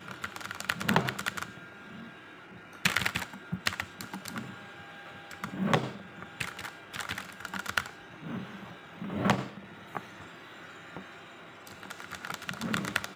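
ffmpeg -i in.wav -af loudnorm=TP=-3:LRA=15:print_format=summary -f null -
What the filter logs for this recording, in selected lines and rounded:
Input Integrated:    -34.7 LUFS
Input True Peak:     -11.2 dBTP
Input LRA:             4.2 LU
Input Threshold:     -45.8 LUFS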